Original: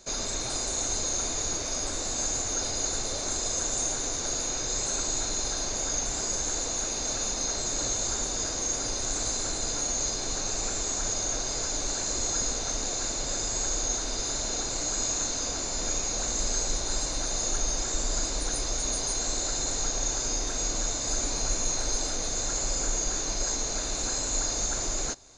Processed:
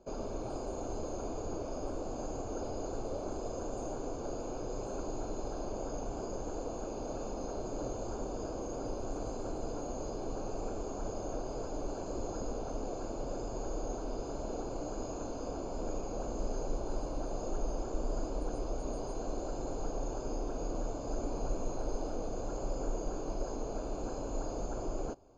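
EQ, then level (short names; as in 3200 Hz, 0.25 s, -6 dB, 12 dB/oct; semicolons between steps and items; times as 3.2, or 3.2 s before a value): running mean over 23 samples; bell 450 Hz +5.5 dB 2.1 oct; -4.0 dB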